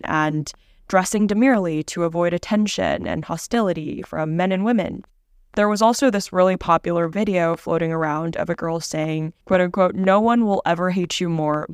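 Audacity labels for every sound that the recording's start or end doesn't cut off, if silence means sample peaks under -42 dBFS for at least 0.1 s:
0.900000	5.040000	sound
5.540000	9.310000	sound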